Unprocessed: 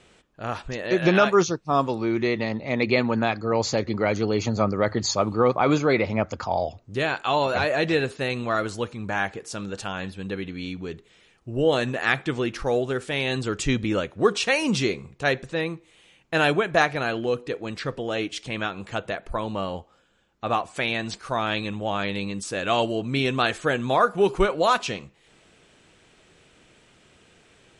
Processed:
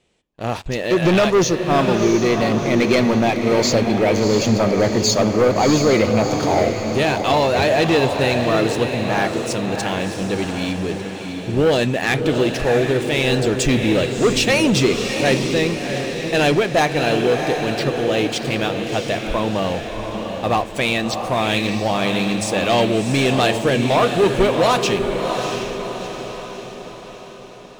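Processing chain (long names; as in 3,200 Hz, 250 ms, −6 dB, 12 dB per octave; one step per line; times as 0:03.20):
parametric band 1,400 Hz −9 dB 0.63 octaves
mains-hum notches 50/100 Hz
leveller curve on the samples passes 3
feedback delay with all-pass diffusion 689 ms, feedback 52%, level −5.5 dB
level −2.5 dB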